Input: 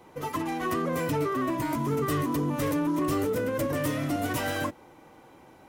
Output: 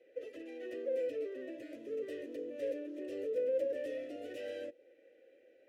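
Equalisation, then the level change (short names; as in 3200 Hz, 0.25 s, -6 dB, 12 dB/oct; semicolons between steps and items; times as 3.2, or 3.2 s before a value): dynamic EQ 1800 Hz, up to -7 dB, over -48 dBFS, Q 1.2; vowel filter e; fixed phaser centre 380 Hz, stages 4; +2.0 dB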